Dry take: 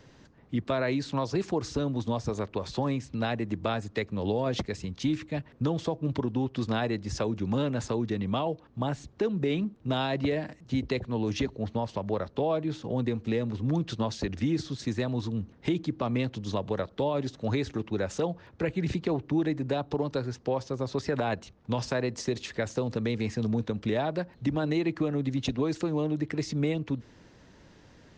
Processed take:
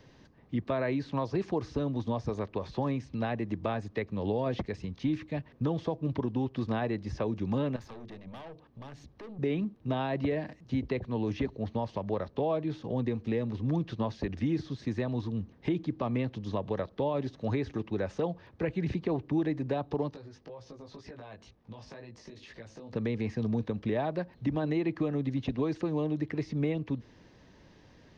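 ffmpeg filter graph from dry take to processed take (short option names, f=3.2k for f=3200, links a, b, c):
-filter_complex "[0:a]asettb=1/sr,asplit=3[a][b][c];[a]atrim=end=7.764[d];[b]atrim=start=7.76:end=9.39,asetpts=PTS-STARTPTS,afade=t=in:d=0.004:c=qsin,afade=t=out:st=1.626:d=0.004:c=qsin,aeval=exprs='(tanh(39.8*val(0)+0.4)-tanh(0.4))/39.8':c=same,acompressor=threshold=-41dB:ratio=3:attack=3.2:release=140:knee=1:detection=peak,bandreject=f=50:t=h:w=6,bandreject=f=100:t=h:w=6,bandreject=f=150:t=h:w=6,bandreject=f=200:t=h:w=6,bandreject=f=250:t=h:w=6,bandreject=f=300:t=h:w=6,bandreject=f=350:t=h:w=6,bandreject=f=400:t=h:w=6,bandreject=f=450:t=h:w=6[e];[c]atrim=start=9.386[f];[d][e]acrossfade=d=0.004:c1=hsin:c2=qsin[g];[g][f]acrossfade=d=0.004:c1=qsin:c2=hsin,asettb=1/sr,asplit=3[h][i][j];[h]atrim=end=20.104[k];[i]atrim=start=20.1:end=22.93,asetpts=PTS-STARTPTS,afade=t=in:d=0.004:c=qsin,afade=t=out:st=2.826:d=0.004:c=qsin,acompressor=threshold=-37dB:ratio=8:attack=3.2:release=140:knee=1:detection=peak,flanger=delay=17:depth=2.5:speed=2[l];[j]atrim=start=22.926[m];[k][l]acrossfade=d=0.004:c1=hsin:c2=qsin[n];[n][m]acrossfade=d=0.004:c1=qsin:c2=hsin,acrossover=split=2600[o][p];[p]acompressor=threshold=-51dB:ratio=4:attack=1:release=60[q];[o][q]amix=inputs=2:normalize=0,equalizer=f=7.5k:w=4.3:g=-12.5,bandreject=f=1.4k:w=10,volume=-2dB"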